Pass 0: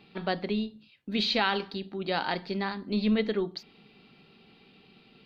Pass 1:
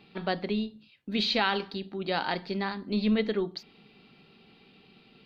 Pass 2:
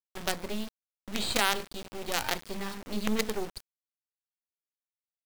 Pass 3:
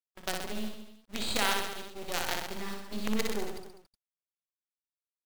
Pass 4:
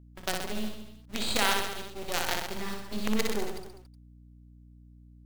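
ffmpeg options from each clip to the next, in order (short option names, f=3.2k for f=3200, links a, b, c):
-af anull
-af "acrusher=bits=4:dc=4:mix=0:aa=0.000001"
-af "agate=range=-30dB:threshold=-38dB:ratio=16:detection=peak,aecho=1:1:60|126|198.6|278.5|366.3:0.631|0.398|0.251|0.158|0.1,volume=-4dB"
-af "aeval=exprs='val(0)+0.002*(sin(2*PI*60*n/s)+sin(2*PI*2*60*n/s)/2+sin(2*PI*3*60*n/s)/3+sin(2*PI*4*60*n/s)/4+sin(2*PI*5*60*n/s)/5)':c=same,volume=2.5dB"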